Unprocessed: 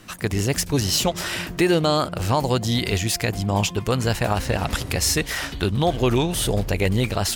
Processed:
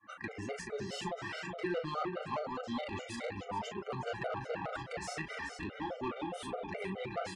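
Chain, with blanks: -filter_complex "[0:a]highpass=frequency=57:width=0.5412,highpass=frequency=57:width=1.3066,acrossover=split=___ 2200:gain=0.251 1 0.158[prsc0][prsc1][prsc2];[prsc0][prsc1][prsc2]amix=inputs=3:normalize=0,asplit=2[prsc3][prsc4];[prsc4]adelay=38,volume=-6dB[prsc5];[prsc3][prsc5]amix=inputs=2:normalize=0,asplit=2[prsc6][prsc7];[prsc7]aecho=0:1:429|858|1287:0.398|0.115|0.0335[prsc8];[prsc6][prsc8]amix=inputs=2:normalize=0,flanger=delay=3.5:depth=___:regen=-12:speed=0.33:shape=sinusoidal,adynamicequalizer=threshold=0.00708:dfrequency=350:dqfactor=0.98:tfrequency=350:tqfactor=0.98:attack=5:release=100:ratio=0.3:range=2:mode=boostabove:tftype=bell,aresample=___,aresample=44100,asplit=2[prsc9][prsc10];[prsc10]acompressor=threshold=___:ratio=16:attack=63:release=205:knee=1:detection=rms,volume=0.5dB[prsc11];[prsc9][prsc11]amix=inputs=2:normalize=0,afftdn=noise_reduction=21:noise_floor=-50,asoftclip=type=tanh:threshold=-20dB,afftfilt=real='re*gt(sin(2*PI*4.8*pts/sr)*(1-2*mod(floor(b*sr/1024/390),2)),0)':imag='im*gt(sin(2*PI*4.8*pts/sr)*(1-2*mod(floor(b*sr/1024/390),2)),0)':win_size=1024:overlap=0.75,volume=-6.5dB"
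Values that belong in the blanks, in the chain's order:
590, 2.8, 22050, -39dB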